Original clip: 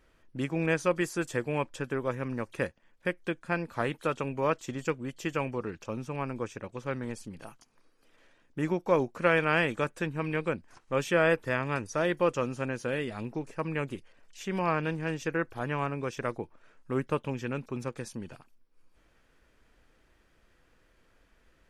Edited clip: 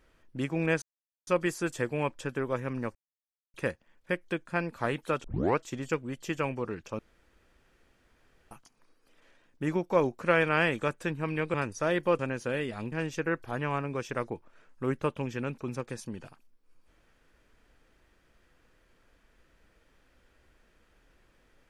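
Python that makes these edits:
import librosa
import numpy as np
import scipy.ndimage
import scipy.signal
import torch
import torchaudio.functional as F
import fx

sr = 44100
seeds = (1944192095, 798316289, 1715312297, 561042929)

y = fx.edit(x, sr, fx.insert_silence(at_s=0.82, length_s=0.45),
    fx.insert_silence(at_s=2.5, length_s=0.59),
    fx.tape_start(start_s=4.2, length_s=0.34),
    fx.room_tone_fill(start_s=5.95, length_s=1.52),
    fx.cut(start_s=10.5, length_s=1.18),
    fx.cut(start_s=12.33, length_s=0.25),
    fx.cut(start_s=13.31, length_s=1.69), tone=tone)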